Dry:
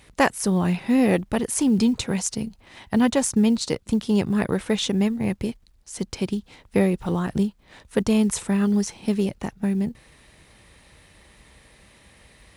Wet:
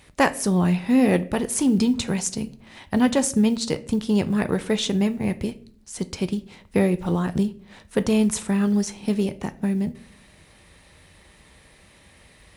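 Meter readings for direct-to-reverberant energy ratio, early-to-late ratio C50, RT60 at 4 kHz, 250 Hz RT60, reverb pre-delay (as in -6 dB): 11.5 dB, 18.5 dB, 0.35 s, 0.80 s, 5 ms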